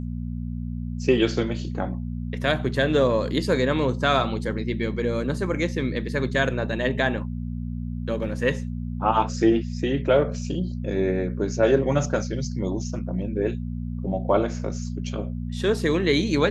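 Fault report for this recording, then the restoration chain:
hum 60 Hz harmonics 4 -30 dBFS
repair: de-hum 60 Hz, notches 4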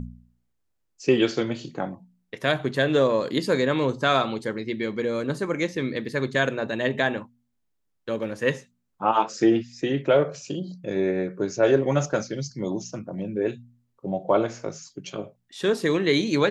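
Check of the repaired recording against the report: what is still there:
nothing left

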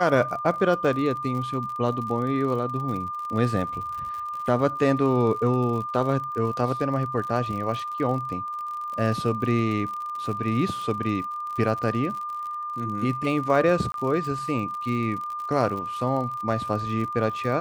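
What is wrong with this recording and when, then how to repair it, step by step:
crackle 53 per s -32 dBFS
whine 1.2 kHz -29 dBFS
13.92–13.94 s: dropout 22 ms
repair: de-click; band-stop 1.2 kHz, Q 30; interpolate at 13.92 s, 22 ms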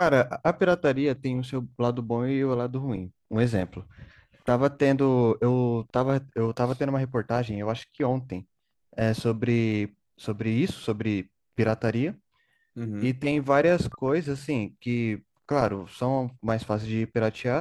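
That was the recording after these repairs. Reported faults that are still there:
nothing left

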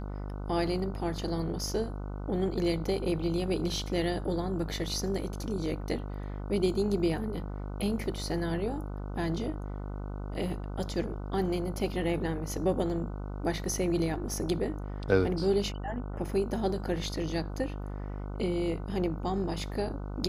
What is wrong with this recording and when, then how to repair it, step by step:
buzz 50 Hz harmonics 30 -37 dBFS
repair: de-hum 50 Hz, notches 30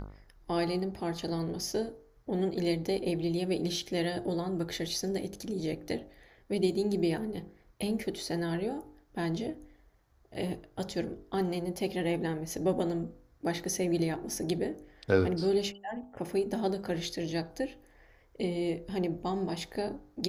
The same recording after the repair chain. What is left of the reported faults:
nothing left

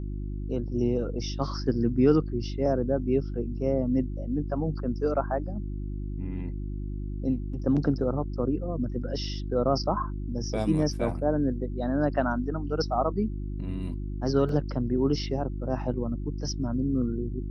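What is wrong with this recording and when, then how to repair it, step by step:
hum 50 Hz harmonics 7 -33 dBFS
14.49 s: dropout 2.6 ms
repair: de-hum 50 Hz, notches 7; interpolate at 14.49 s, 2.6 ms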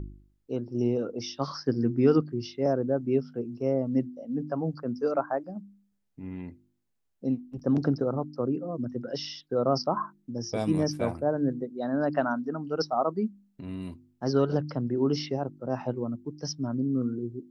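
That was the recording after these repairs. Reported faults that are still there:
nothing left

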